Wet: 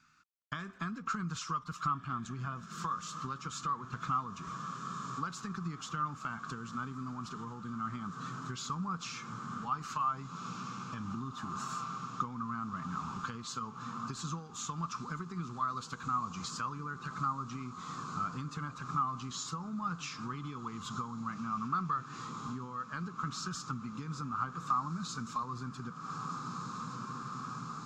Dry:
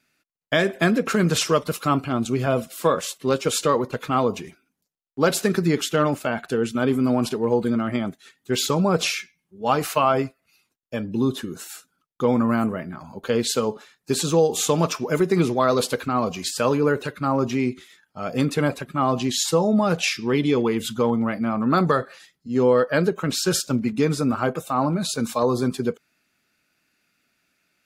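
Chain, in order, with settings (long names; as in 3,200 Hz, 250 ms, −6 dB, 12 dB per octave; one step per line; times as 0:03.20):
mu-law and A-law mismatch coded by mu
on a send: feedback delay with all-pass diffusion 1,594 ms, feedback 75%, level −16 dB
on the sum: downward compressor 10 to 1, threshold −28 dBFS, peak gain reduction 15 dB
drawn EQ curve 180 Hz 0 dB, 580 Hz −24 dB, 1,200 Hz +10 dB, 1,900 Hz −9 dB, 3,500 Hz −7 dB, 7,000 Hz −3 dB, 10,000 Hz −26 dB
level −4 dB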